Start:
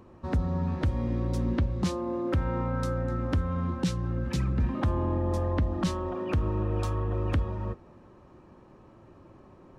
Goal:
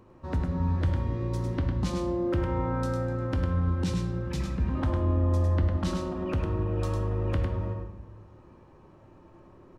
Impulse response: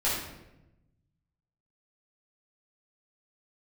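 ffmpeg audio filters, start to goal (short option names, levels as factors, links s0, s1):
-filter_complex "[0:a]aecho=1:1:103:0.562,asplit=2[s0][s1];[1:a]atrim=start_sample=2205[s2];[s1][s2]afir=irnorm=-1:irlink=0,volume=0.211[s3];[s0][s3]amix=inputs=2:normalize=0,volume=0.596"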